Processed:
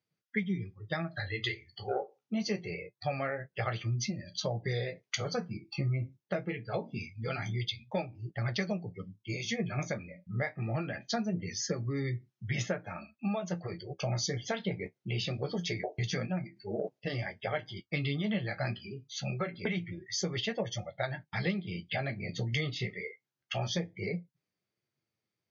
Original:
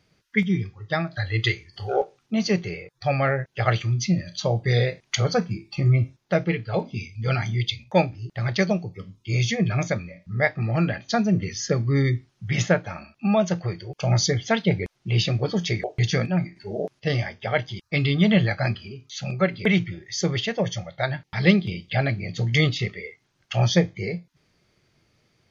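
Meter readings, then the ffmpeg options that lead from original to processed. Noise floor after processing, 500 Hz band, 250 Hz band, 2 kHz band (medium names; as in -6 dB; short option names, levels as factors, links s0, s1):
under -85 dBFS, -10.5 dB, -11.5 dB, -10.0 dB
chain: -af "afftdn=nr=19:nf=-43,highpass=120,acompressor=threshold=0.0501:ratio=6,flanger=delay=8.3:depth=7.6:regen=-38:speed=0.24:shape=triangular"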